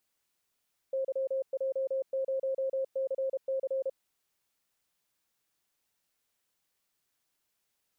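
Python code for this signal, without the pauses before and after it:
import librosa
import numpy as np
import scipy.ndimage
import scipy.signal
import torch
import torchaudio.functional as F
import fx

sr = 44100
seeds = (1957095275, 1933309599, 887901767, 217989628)

y = fx.morse(sr, text='YJ0CC', wpm=32, hz=533.0, level_db=-28.0)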